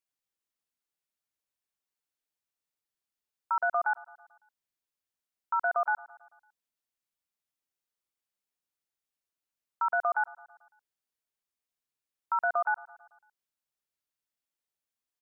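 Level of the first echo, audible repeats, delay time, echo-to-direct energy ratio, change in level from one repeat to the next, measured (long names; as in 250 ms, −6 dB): −21.5 dB, 3, 111 ms, −19.5 dB, −4.5 dB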